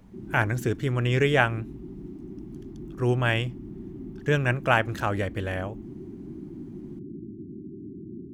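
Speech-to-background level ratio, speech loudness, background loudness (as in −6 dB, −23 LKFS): 15.0 dB, −26.0 LKFS, −41.0 LKFS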